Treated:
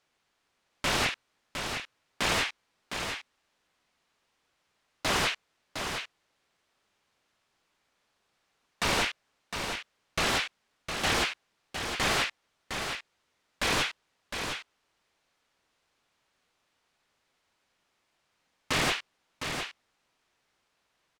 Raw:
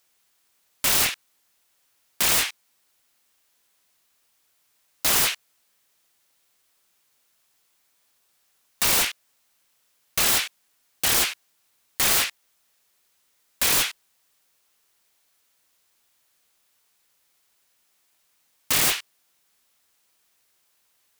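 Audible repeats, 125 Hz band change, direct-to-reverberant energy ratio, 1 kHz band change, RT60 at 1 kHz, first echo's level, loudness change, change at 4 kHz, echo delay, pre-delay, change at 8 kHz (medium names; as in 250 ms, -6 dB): 1, +2.5 dB, no reverb, +0.5 dB, no reverb, -7.0 dB, -9.5 dB, -4.5 dB, 709 ms, no reverb, -12.5 dB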